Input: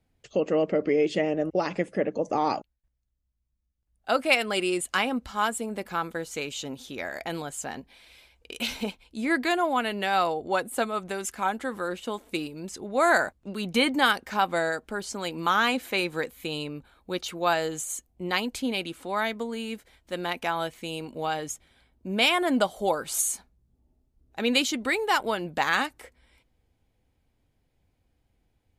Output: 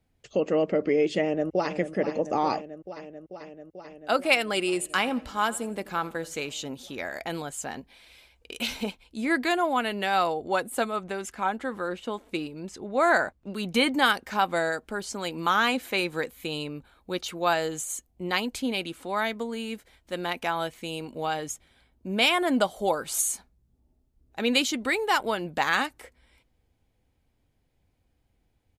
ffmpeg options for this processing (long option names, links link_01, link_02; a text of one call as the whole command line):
ffmpeg -i in.wav -filter_complex "[0:a]asplit=2[link_01][link_02];[link_02]afade=type=in:start_time=1.2:duration=0.01,afade=type=out:start_time=1.75:duration=0.01,aecho=0:1:440|880|1320|1760|2200|2640|3080|3520|3960|4400|4840|5280:0.298538|0.238831|0.191064|0.152852|0.122281|0.097825|0.07826|0.062608|0.0500864|0.0400691|0.0320553|0.0256442[link_03];[link_01][link_03]amix=inputs=2:normalize=0,asettb=1/sr,asplit=3[link_04][link_05][link_06];[link_04]atrim=end=4.564[link_07];[link_05]atrim=start=4.56:end=6.41,asetpts=PTS-STARTPTS,afade=type=in:duration=0.004:curve=qsin,afade=type=out:start_time=1.846:duration=0.004:curve=qsin,aecho=1:1:85|170|255:0.1|0.036|0.013,atrim=end_sample=81585[link_08];[link_06]atrim=start=6.406[link_09];[link_07][link_08]acrossfade=duration=0.004:curve1=hsin:curve2=qsin[link_10];[link_10][link_09]acrossfade=duration=0.004:curve1=qsin:curve2=hsin,asettb=1/sr,asplit=3[link_11][link_12][link_13];[link_11]atrim=end=10.964[link_14];[link_12]atrim=start=10.96:end=13.5,asetpts=PTS-STARTPTS,afade=type=in:duration=0.004:curve=qsin,afade=type=out:start_time=2.536:duration=0.004:curve=qsin,lowpass=frequency=3900:poles=1[link_15];[link_13]atrim=start=13.496[link_16];[link_14][link_15]acrossfade=duration=0.004:curve1=hsin:curve2=qsin[link_17];[link_17][link_16]acrossfade=duration=0.004:curve1=qsin:curve2=hsin" out.wav